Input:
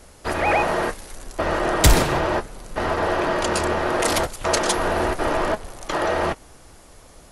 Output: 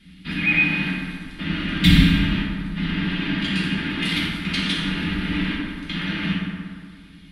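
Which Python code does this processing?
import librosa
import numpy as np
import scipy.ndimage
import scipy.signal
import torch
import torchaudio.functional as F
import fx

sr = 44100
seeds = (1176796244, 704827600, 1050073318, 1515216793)

y = fx.curve_eq(x, sr, hz=(120.0, 170.0, 290.0, 540.0, 1100.0, 2100.0, 3600.0, 6600.0, 10000.0), db=(0, 13, 7, -25, -13, 8, 11, -16, -10))
y = fx.rev_fdn(y, sr, rt60_s=2.0, lf_ratio=0.95, hf_ratio=0.5, size_ms=33.0, drr_db=-7.0)
y = y * librosa.db_to_amplitude(-10.0)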